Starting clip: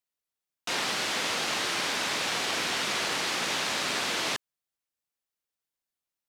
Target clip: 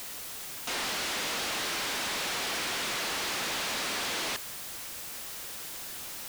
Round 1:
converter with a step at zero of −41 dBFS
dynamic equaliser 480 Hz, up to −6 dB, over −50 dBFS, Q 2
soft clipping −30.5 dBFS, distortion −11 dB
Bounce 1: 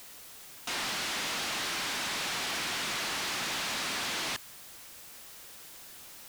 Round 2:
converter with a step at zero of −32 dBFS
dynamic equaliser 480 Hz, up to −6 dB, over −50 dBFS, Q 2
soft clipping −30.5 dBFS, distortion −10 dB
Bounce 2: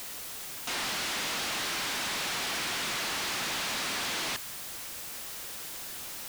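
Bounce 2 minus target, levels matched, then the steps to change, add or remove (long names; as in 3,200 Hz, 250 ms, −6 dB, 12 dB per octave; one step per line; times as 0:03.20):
500 Hz band −2.5 dB
change: dynamic equaliser 130 Hz, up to −6 dB, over −50 dBFS, Q 2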